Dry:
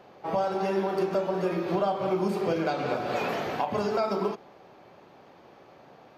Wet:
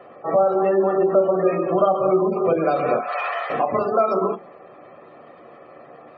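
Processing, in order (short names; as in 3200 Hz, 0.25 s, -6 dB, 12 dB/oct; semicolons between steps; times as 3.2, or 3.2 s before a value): spectral gate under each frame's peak -25 dB strong; 2.99–3.5 HPF 770 Hz 24 dB/oct; reverb RT60 0.15 s, pre-delay 3 ms, DRR 9.5 dB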